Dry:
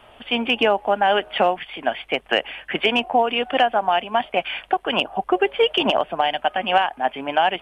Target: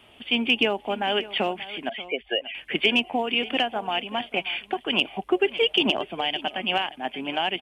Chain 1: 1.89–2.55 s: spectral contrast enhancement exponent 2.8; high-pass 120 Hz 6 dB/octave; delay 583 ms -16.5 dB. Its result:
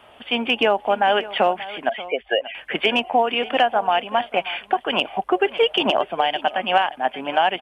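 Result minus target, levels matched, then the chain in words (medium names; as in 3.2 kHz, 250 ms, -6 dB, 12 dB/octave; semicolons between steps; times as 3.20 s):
1 kHz band +5.5 dB
1.89–2.55 s: spectral contrast enhancement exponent 2.8; high-pass 120 Hz 6 dB/octave; high-order bell 920 Hz -9.5 dB 2.1 oct; delay 583 ms -16.5 dB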